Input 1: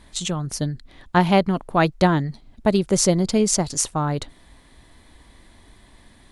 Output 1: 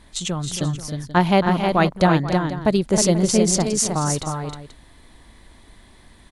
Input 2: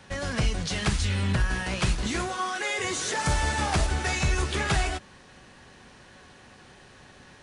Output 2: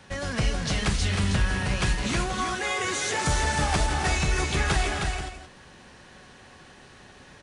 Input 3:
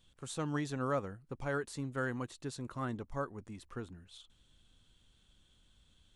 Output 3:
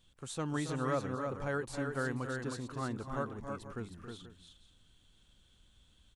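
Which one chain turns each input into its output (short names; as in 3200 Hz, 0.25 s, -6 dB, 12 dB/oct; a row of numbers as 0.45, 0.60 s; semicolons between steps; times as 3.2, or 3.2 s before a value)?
tapped delay 0.274/0.313/0.484 s -11/-5/-14.5 dB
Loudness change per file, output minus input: +1.5, +1.0, +1.5 LU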